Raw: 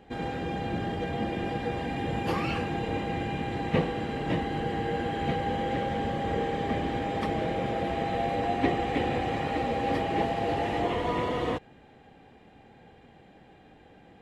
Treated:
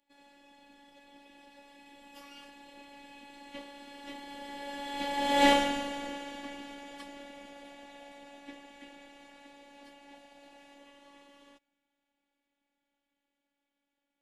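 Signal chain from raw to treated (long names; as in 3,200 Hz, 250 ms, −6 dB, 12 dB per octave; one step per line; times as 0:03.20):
source passing by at 0:05.49, 18 m/s, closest 1.5 metres
high-pass filter 110 Hz
high-shelf EQ 5,100 Hz +7.5 dB
phases set to zero 282 Hz
high-shelf EQ 2,100 Hz +11.5 dB
level +9 dB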